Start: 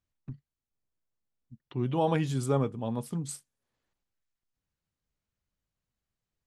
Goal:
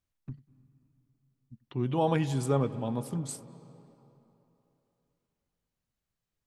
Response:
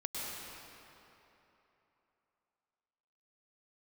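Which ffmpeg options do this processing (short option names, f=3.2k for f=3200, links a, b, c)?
-filter_complex "[0:a]asplit=2[a][b];[1:a]atrim=start_sample=2205,lowpass=4.3k,adelay=93[c];[b][c]afir=irnorm=-1:irlink=0,volume=-17.5dB[d];[a][d]amix=inputs=2:normalize=0"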